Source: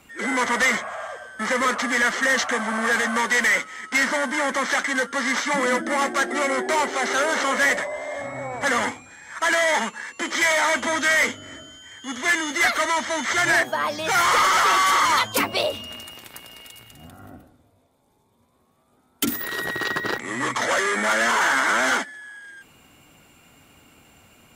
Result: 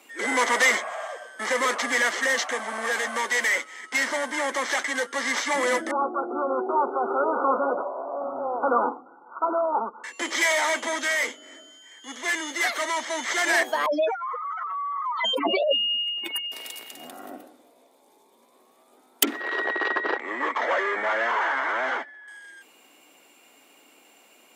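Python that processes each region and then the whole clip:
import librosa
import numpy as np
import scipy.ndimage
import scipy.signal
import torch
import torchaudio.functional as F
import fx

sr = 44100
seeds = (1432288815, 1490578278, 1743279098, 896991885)

y = fx.chain(x, sr, fx.brickwall_lowpass(high_hz=1500.0),
    fx.notch(hz=610.0, q=7.7), at=(5.91, 10.04))
y = fx.chain(y, sr, fx.spec_expand(power=3.3),
    fx.over_compress(threshold_db=-29.0, ratio=-1.0), at=(13.86, 16.52))
y = fx.chain(y, sr, fx.lowpass(hz=1800.0, slope=12),
    fx.low_shelf(hz=290.0, db=-11.5), at=(19.23, 22.28))
y = scipy.signal.sosfilt(scipy.signal.butter(4, 300.0, 'highpass', fs=sr, output='sos'), y)
y = fx.peak_eq(y, sr, hz=1400.0, db=-5.5, octaves=0.46)
y = fx.rider(y, sr, range_db=10, speed_s=2.0)
y = y * 10.0 ** (-1.0 / 20.0)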